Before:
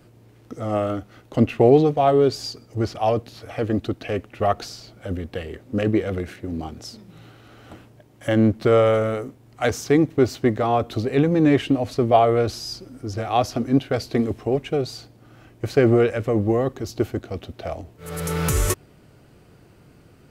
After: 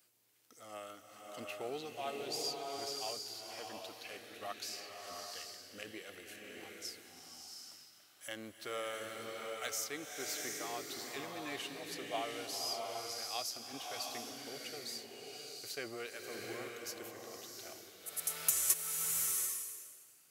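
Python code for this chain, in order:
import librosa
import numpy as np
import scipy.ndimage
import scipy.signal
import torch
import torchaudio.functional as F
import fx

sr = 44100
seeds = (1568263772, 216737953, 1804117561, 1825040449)

y = np.diff(x, prepend=0.0)
y = fx.rev_bloom(y, sr, seeds[0], attack_ms=740, drr_db=0.5)
y = F.gain(torch.from_numpy(y), -4.0).numpy()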